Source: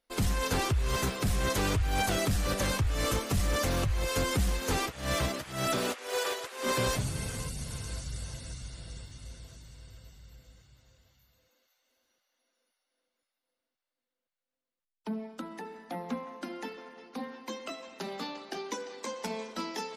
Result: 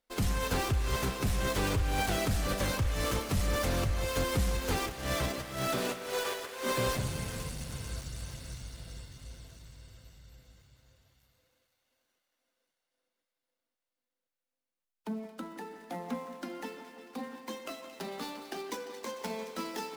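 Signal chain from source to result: switching dead time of 0.079 ms; split-band echo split 1600 Hz, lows 0.17 s, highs 0.224 s, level -13 dB; gain -1.5 dB

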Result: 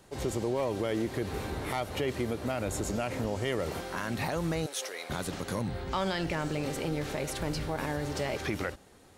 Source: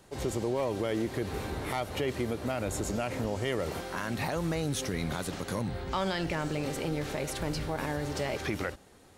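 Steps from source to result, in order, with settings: 4.66–5.1 Chebyshev high-pass 520 Hz, order 3

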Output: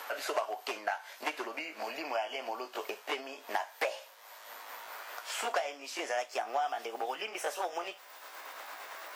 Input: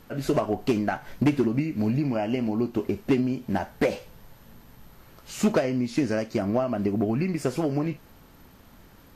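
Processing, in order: gliding pitch shift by +3 st starting unshifted; HPF 650 Hz 24 dB/oct; three-band squash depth 70%

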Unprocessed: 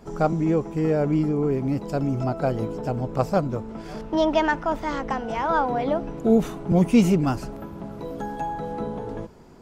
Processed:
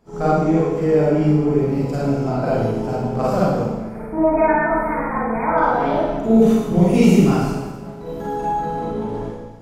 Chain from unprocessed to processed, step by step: 3.7–5.58 brick-wall FIR band-stop 2500–8300 Hz; gate -34 dBFS, range -8 dB; reverb RT60 1.2 s, pre-delay 36 ms, DRR -8.5 dB; gain -3.5 dB

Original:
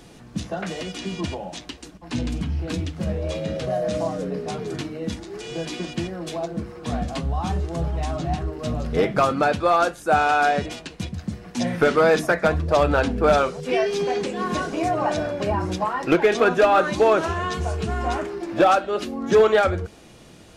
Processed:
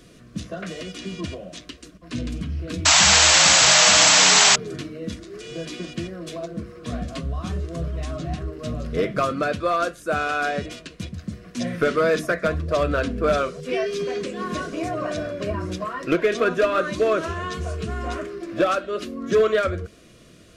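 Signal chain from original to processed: Butterworth band-stop 840 Hz, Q 2.7; painted sound noise, 2.85–4.56, 590–8000 Hz -12 dBFS; gain -2.5 dB

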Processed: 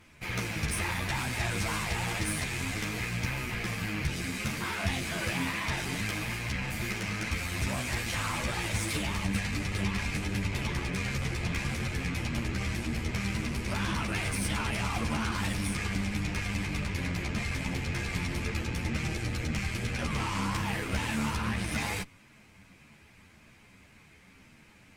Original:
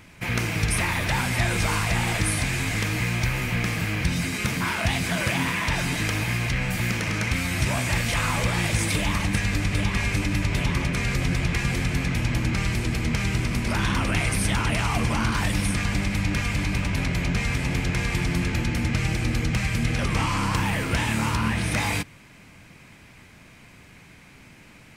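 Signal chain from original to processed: added harmonics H 8 -21 dB, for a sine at -9 dBFS; ensemble effect; gain -4.5 dB

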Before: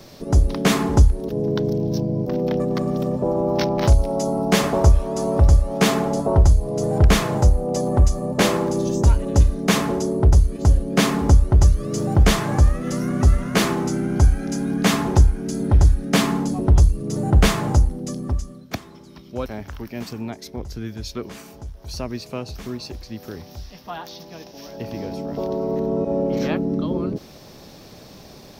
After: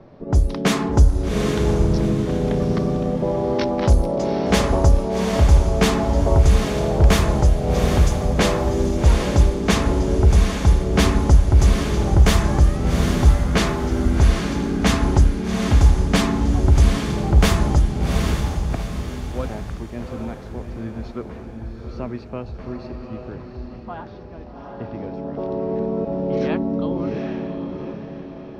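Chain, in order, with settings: 1.63–2.13 power-law curve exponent 0.7; low-pass opened by the level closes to 1200 Hz, open at -11 dBFS; diffused feedback echo 0.788 s, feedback 42%, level -4.5 dB; gain -1 dB

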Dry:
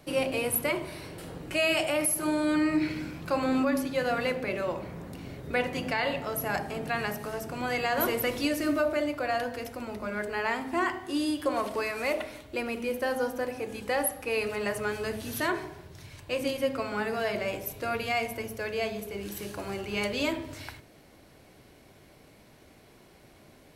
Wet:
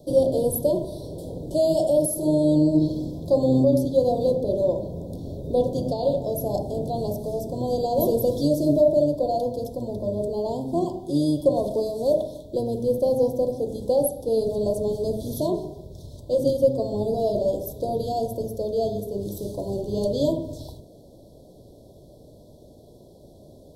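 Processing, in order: octaver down 1 oct, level -4 dB; Chebyshev band-stop 990–3400 Hz, order 5; resonant low shelf 720 Hz +6 dB, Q 3

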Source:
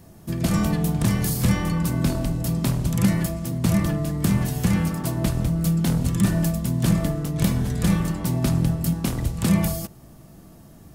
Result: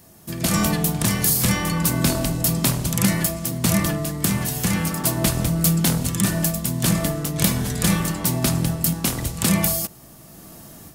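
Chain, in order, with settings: tilt +2 dB/oct; AGC gain up to 8 dB

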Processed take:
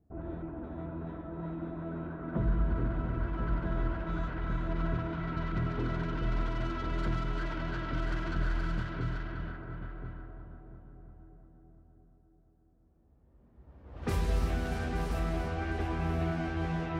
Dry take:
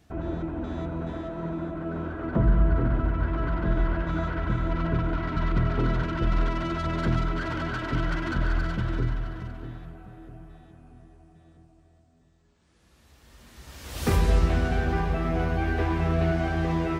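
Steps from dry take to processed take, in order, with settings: multi-head echo 0.345 s, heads all three, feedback 41%, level -9.5 dB; low-pass opened by the level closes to 540 Hz, open at -19 dBFS; gain -8.5 dB

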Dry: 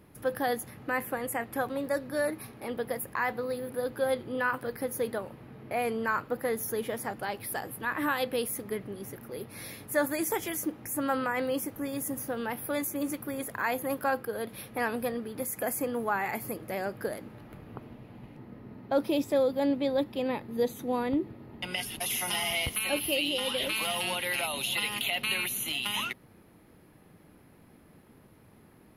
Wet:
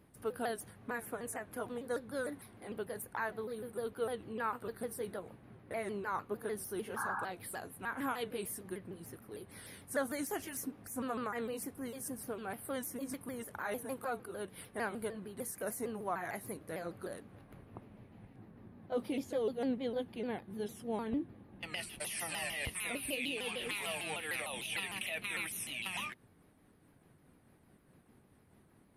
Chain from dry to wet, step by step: repeated pitch sweeps -3.5 st, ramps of 0.151 s; painted sound noise, 6.96–7.25, 760–1700 Hz -31 dBFS; gain -7 dB

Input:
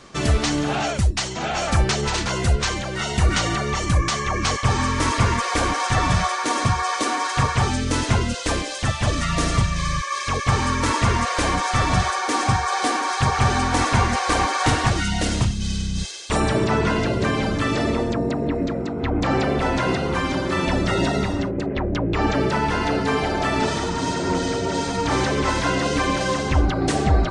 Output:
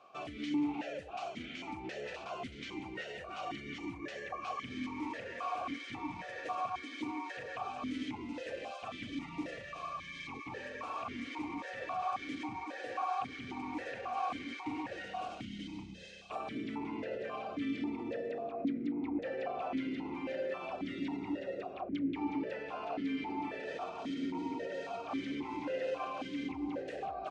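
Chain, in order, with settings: echo 0.379 s -9 dB; limiter -16.5 dBFS, peak gain reduction 10.5 dB; vowel sequencer 3.7 Hz; gain -2.5 dB

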